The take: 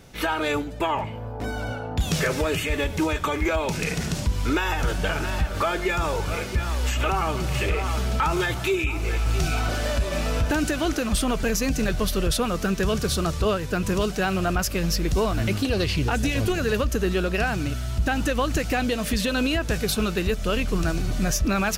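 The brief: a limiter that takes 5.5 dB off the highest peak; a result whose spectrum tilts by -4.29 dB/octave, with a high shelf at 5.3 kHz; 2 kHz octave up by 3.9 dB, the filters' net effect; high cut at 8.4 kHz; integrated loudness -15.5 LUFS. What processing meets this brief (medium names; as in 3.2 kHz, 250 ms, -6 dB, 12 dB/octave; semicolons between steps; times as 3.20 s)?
low-pass 8.4 kHz; peaking EQ 2 kHz +4.5 dB; treble shelf 5.3 kHz +5.5 dB; trim +10 dB; peak limiter -6 dBFS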